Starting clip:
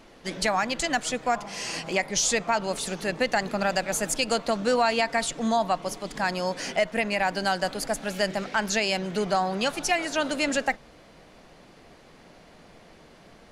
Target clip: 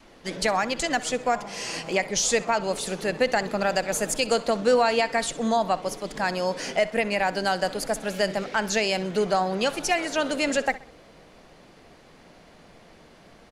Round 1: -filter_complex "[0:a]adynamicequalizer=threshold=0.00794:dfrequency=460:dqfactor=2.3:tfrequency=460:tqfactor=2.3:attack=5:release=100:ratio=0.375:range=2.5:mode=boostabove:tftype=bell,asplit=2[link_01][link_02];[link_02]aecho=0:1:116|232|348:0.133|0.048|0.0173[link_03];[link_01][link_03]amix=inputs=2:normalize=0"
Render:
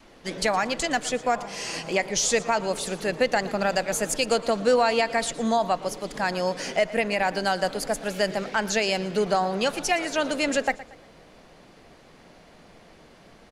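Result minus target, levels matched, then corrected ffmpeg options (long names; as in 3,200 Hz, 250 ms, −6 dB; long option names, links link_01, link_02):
echo 52 ms late
-filter_complex "[0:a]adynamicequalizer=threshold=0.00794:dfrequency=460:dqfactor=2.3:tfrequency=460:tqfactor=2.3:attack=5:release=100:ratio=0.375:range=2.5:mode=boostabove:tftype=bell,asplit=2[link_01][link_02];[link_02]aecho=0:1:64|128|192:0.133|0.048|0.0173[link_03];[link_01][link_03]amix=inputs=2:normalize=0"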